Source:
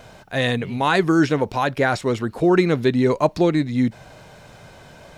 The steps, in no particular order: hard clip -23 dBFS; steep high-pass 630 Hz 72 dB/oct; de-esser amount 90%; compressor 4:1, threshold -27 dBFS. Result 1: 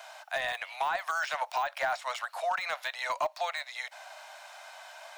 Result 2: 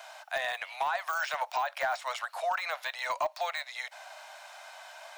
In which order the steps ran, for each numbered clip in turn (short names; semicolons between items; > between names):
steep high-pass > de-esser > compressor > hard clip; de-esser > steep high-pass > compressor > hard clip